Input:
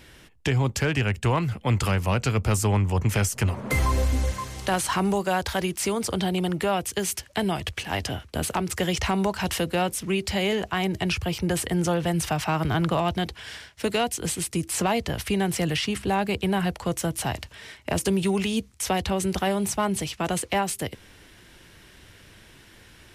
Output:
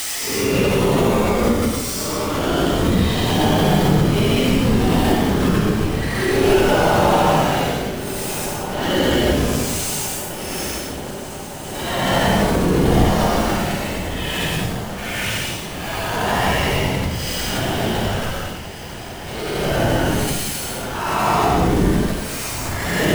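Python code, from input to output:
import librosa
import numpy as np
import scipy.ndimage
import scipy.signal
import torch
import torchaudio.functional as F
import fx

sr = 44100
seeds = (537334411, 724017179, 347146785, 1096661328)

p1 = fx.octave_divider(x, sr, octaves=2, level_db=-3.0)
p2 = fx.high_shelf(p1, sr, hz=3900.0, db=-7.5)
p3 = fx.level_steps(p2, sr, step_db=19)
p4 = p2 + (p3 * librosa.db_to_amplitude(2.5))
p5 = np.where(np.abs(p4) >= 10.0 ** (-25.5 / 20.0), p4, 0.0)
p6 = fx.whisperise(p5, sr, seeds[0])
p7 = fx.paulstretch(p6, sr, seeds[1], factor=7.7, window_s=0.1, from_s=5.8)
p8 = p7 + fx.echo_diffused(p7, sr, ms=1588, feedback_pct=69, wet_db=-13, dry=0)
p9 = fx.pre_swell(p8, sr, db_per_s=30.0)
y = p9 * librosa.db_to_amplitude(5.5)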